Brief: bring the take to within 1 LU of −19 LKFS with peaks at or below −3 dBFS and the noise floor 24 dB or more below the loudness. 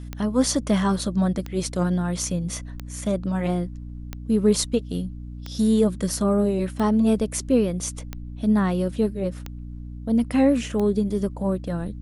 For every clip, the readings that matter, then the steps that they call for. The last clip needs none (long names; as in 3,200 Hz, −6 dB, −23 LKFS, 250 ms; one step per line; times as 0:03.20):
number of clicks 9; mains hum 60 Hz; hum harmonics up to 300 Hz; level of the hum −33 dBFS; integrated loudness −23.5 LKFS; sample peak −8.0 dBFS; target loudness −19.0 LKFS
→ click removal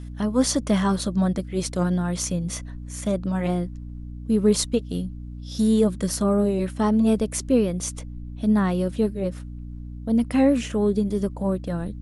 number of clicks 0; mains hum 60 Hz; hum harmonics up to 300 Hz; level of the hum −33 dBFS
→ hum removal 60 Hz, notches 5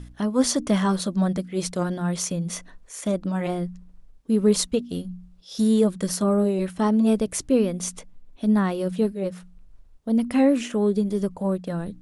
mains hum none found; integrated loudness −24.0 LKFS; sample peak −8.5 dBFS; target loudness −19.0 LKFS
→ level +5 dB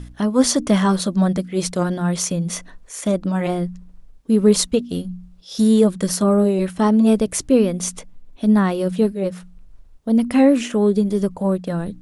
integrated loudness −19.0 LKFS; sample peak −3.5 dBFS; background noise floor −45 dBFS